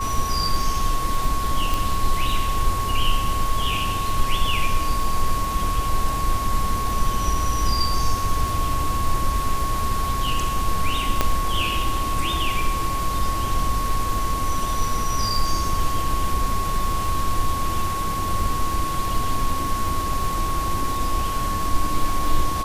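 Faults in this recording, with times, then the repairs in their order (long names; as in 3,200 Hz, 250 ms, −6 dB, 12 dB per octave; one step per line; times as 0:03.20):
surface crackle 24 per second −27 dBFS
whistle 1,100 Hz −25 dBFS
0:01.74: click
0:11.21: click −4 dBFS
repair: click removal
notch filter 1,100 Hz, Q 30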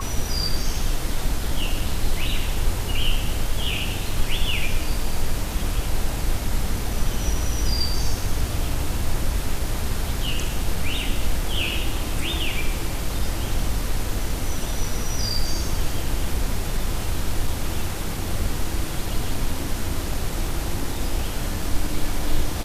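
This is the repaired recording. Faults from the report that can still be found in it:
0:11.21: click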